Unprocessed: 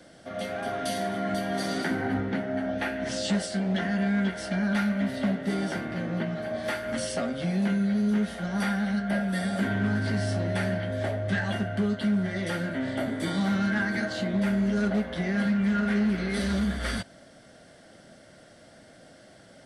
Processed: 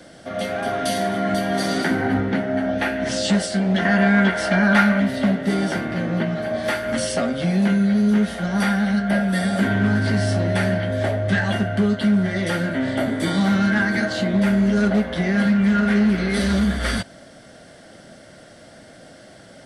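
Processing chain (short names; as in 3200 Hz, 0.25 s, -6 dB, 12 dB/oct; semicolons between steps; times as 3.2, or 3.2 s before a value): 3.85–5 bell 1200 Hz +8 dB 2.5 oct; gain +7.5 dB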